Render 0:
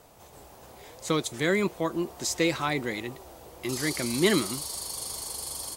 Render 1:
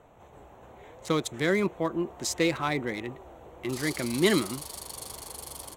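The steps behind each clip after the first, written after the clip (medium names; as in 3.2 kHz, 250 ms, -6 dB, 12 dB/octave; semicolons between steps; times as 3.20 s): local Wiener filter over 9 samples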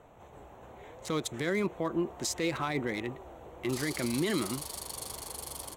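peak limiter -21 dBFS, peak gain reduction 11.5 dB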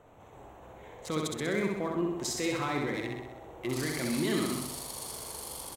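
feedback delay 64 ms, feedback 59%, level -3 dB; trim -2 dB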